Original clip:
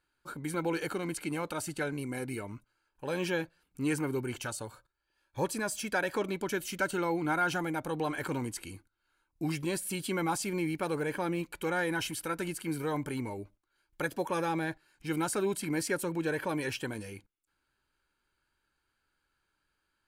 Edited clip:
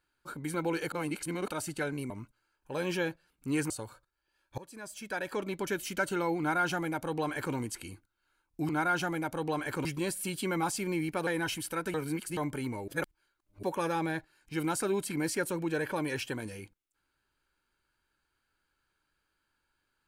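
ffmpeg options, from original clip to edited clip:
-filter_complex "[0:a]asplit=13[a][b][c][d][e][f][g][h][i][j][k][l][m];[a]atrim=end=0.922[n];[b]atrim=start=0.918:end=1.482,asetpts=PTS-STARTPTS,areverse[o];[c]atrim=start=1.478:end=2.102[p];[d]atrim=start=2.428:end=4.032[q];[e]atrim=start=4.518:end=5.4,asetpts=PTS-STARTPTS,afade=t=out:st=0.878:d=0.004:c=hsin:silence=0.0749894[r];[f]atrim=start=5.4:end=9.512,asetpts=PTS-STARTPTS,afade=t=in:d=1.11:silence=0.0749894[s];[g]atrim=start=7.208:end=8.372[t];[h]atrim=start=9.508:end=10.932[u];[i]atrim=start=11.798:end=12.472[v];[j]atrim=start=12.468:end=12.902,asetpts=PTS-STARTPTS,areverse[w];[k]atrim=start=12.898:end=13.412[x];[l]atrim=start=13.408:end=14.162,asetpts=PTS-STARTPTS,areverse[y];[m]atrim=start=14.158[z];[n][o]acrossfade=d=0.004:c1=hsin:c2=hsin[aa];[aa][p]acrossfade=d=0.004:c1=hsin:c2=hsin[ab];[ab][q]acrossfade=d=0.004:c1=hsin:c2=hsin[ac];[r][s]concat=n=2:v=0:a=1[ad];[ac][ad]acrossfade=d=0.004:c1=hsin:c2=hsin[ae];[ae][t]acrossfade=d=0.004:c1=hsin:c2=hsin[af];[af][u]acrossfade=d=0.004:c1=hsin:c2=hsin[ag];[ag][v]acrossfade=d=0.004:c1=hsin:c2=hsin[ah];[ah][w]acrossfade=d=0.004:c1=hsin:c2=hsin[ai];[ai][x]acrossfade=d=0.004:c1=hsin:c2=hsin[aj];[aj][y]acrossfade=d=0.004:c1=hsin:c2=hsin[ak];[ak][z]acrossfade=d=0.004:c1=hsin:c2=hsin"

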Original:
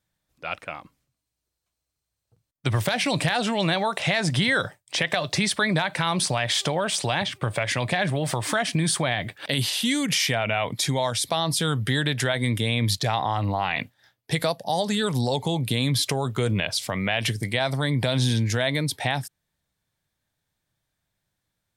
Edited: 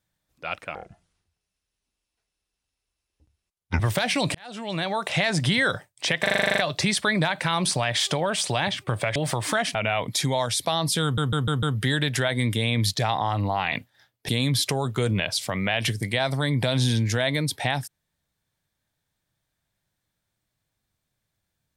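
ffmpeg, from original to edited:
-filter_complex "[0:a]asplit=20[a][b][c][d][e][f][g][h][i][j][k][l][m][n][o][p][q][r][s][t];[a]atrim=end=0.754[u];[b]atrim=start=0.75:end=2.7,asetpts=PTS-STARTPTS,asetrate=28224,aresample=44100,atrim=end_sample=134367,asetpts=PTS-STARTPTS[v];[c]atrim=start=2.696:end=3.25,asetpts=PTS-STARTPTS,afade=t=out:st=0.55:d=0.004:c=hsin[w];[d]atrim=start=3.25:end=5.162,asetpts=PTS-STARTPTS,afade=t=in:d=0.78[x];[e]atrim=start=5.118:end=5.162[y];[f]atrim=start=5.118:end=5.162[z];[g]atrim=start=5.118:end=5.162[aa];[h]atrim=start=5.118:end=5.162[ab];[i]atrim=start=5.118:end=5.162[ac];[j]atrim=start=5.118:end=5.162[ad];[k]atrim=start=5.118:end=5.162[ae];[l]atrim=start=5.118:end=5.162[af];[m]atrim=start=5.118:end=7.702[ag];[n]atrim=start=8.158:end=8.752[ah];[o]atrim=start=10.388:end=11.822[ai];[p]atrim=start=11.668:end=11.822[aj];[q]atrim=start=11.668:end=11.822[ak];[r]atrim=start=11.668:end=11.822[al];[s]atrim=start=11.668:end=14.332[am];[t]atrim=start=15.688[an];[u][v]acrossfade=d=0.004:c1=hsin:c2=hsin[ao];[w][x]concat=n=2:v=0:a=1[ap];[ao][ap]acrossfade=d=0.004:c1=hsin:c2=hsin[aq];[aq][y]acrossfade=d=0.004:c1=hsin:c2=hsin[ar];[ar][z]acrossfade=d=0.004:c1=hsin:c2=hsin[as];[as][aa]acrossfade=d=0.004:c1=hsin:c2=hsin[at];[at][ab]acrossfade=d=0.004:c1=hsin:c2=hsin[au];[au][ac]acrossfade=d=0.004:c1=hsin:c2=hsin[av];[av][ad]acrossfade=d=0.004:c1=hsin:c2=hsin[aw];[aw][ae]acrossfade=d=0.004:c1=hsin:c2=hsin[ax];[ax][af]acrossfade=d=0.004:c1=hsin:c2=hsin[ay];[ay][ag]acrossfade=d=0.004:c1=hsin:c2=hsin[az];[az][ah]acrossfade=d=0.004:c1=hsin:c2=hsin[ba];[ba][ai]acrossfade=d=0.004:c1=hsin:c2=hsin[bb];[bb][aj]acrossfade=d=0.004:c1=hsin:c2=hsin[bc];[bc][ak]acrossfade=d=0.004:c1=hsin:c2=hsin[bd];[bd][al]acrossfade=d=0.004:c1=hsin:c2=hsin[be];[be][am]acrossfade=d=0.004:c1=hsin:c2=hsin[bf];[bf][an]acrossfade=d=0.004:c1=hsin:c2=hsin"

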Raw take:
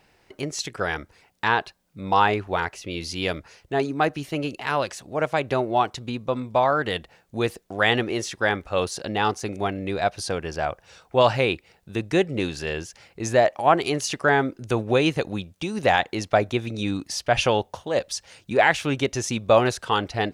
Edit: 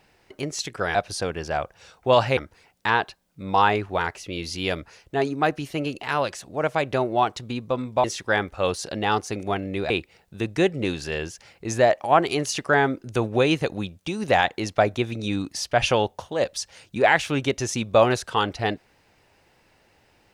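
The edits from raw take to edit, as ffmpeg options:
-filter_complex "[0:a]asplit=5[a][b][c][d][e];[a]atrim=end=0.952[f];[b]atrim=start=10.028:end=11.452[g];[c]atrim=start=0.948:end=6.622[h];[d]atrim=start=8.168:end=10.032[i];[e]atrim=start=11.448[j];[f][g]acrossfade=d=0.004:c1=hsin:c2=hsin[k];[k][h]acrossfade=d=0.004:c1=hsin:c2=hsin[l];[l][i]acrossfade=d=0.004:c1=hsin:c2=hsin[m];[m][j]acrossfade=d=0.004:c1=hsin:c2=hsin"

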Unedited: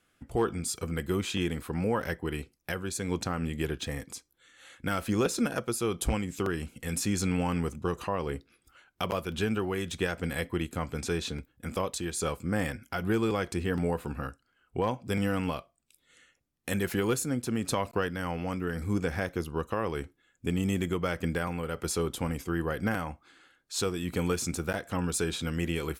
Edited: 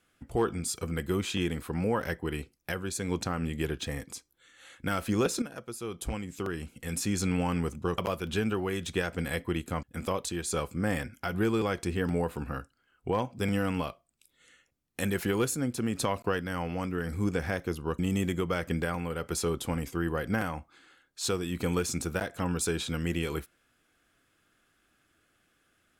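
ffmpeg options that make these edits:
-filter_complex "[0:a]asplit=5[a][b][c][d][e];[a]atrim=end=5.42,asetpts=PTS-STARTPTS,afade=t=out:st=5.416:d=0.004:c=hsin:silence=0.251189[f];[b]atrim=start=5.42:end=7.982,asetpts=PTS-STARTPTS,afade=t=in:d=1.9:silence=0.251189[g];[c]atrim=start=9.028:end=10.882[h];[d]atrim=start=11.518:end=19.682[i];[e]atrim=start=20.518[j];[f][g]concat=n=2:v=0:a=1[k];[k][h]acrossfade=d=0.004:c1=hsin:c2=hsin[l];[l][i]acrossfade=d=0.004:c1=hsin:c2=hsin[m];[m][j]acrossfade=d=0.004:c1=hsin:c2=hsin"

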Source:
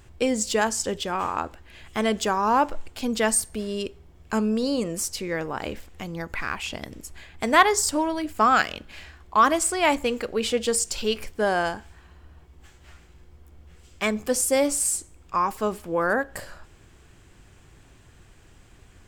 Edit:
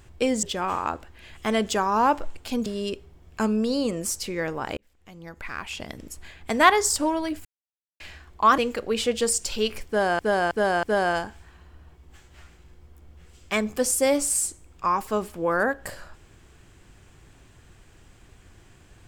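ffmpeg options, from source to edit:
-filter_complex "[0:a]asplit=10[a][b][c][d][e][f][g][h][i][j];[a]atrim=end=0.432[k];[b]atrim=start=0.938:end=3.172[l];[c]atrim=start=3.588:end=5.7,asetpts=PTS-STARTPTS,afade=t=out:st=2.108:d=0.004:c=hsin[m];[d]atrim=start=5.7:end=8.38,asetpts=PTS-STARTPTS,afade=t=in:d=1.33,afade=t=out:st=2.676:d=0.004:c=hsin[n];[e]atrim=start=8.38:end=8.93,asetpts=PTS-STARTPTS,volume=0[o];[f]atrim=start=8.93:end=9.512,asetpts=PTS-STARTPTS,afade=t=in:d=0.004:c=hsin[p];[g]atrim=start=10.038:end=11.652[q];[h]atrim=start=11.328:end=11.652[r];[i]atrim=start=11.328:end=11.652[s];[j]atrim=start=11.328[t];[k][l]acrossfade=d=0.004:c1=hsin:c2=hsin[u];[m][n][o][p]concat=n=4:v=0:a=1[v];[u][v]acrossfade=d=0.004:c1=hsin:c2=hsin[w];[w][q]acrossfade=d=0.004:c1=hsin:c2=hsin[x];[x][r]acrossfade=d=0.004:c1=hsin:c2=hsin[y];[y][s]acrossfade=d=0.004:c1=hsin:c2=hsin[z];[z][t]acrossfade=d=0.004:c1=hsin:c2=hsin"

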